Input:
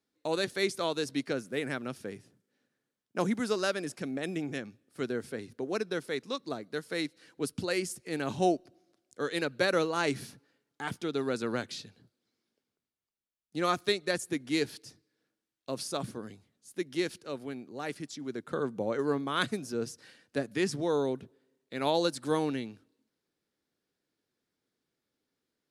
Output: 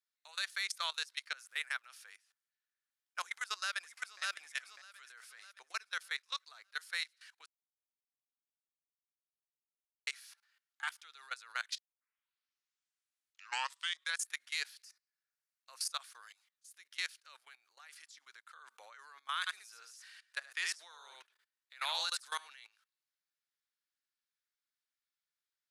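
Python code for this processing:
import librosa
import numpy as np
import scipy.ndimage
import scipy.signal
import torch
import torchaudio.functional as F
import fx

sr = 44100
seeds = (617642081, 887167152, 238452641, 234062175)

y = fx.echo_throw(x, sr, start_s=3.23, length_s=0.98, ms=600, feedback_pct=35, wet_db=-3.5)
y = fx.peak_eq(y, sr, hz=3400.0, db=-8.5, octaves=0.46, at=(14.83, 15.9))
y = fx.echo_single(y, sr, ms=73, db=-4.5, at=(19.46, 22.47), fade=0.02)
y = fx.edit(y, sr, fx.silence(start_s=7.46, length_s=2.61),
    fx.tape_start(start_s=11.78, length_s=2.51), tone=tone)
y = scipy.signal.sosfilt(scipy.signal.butter(4, 1200.0, 'highpass', fs=sr, output='sos'), y)
y = fx.level_steps(y, sr, step_db=20)
y = F.gain(torch.from_numpy(y), 4.0).numpy()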